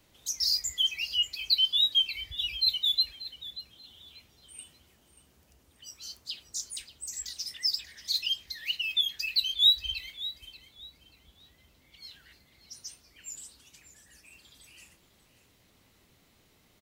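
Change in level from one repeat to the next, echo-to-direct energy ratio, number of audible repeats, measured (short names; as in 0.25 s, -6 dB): -12.0 dB, -15.0 dB, 2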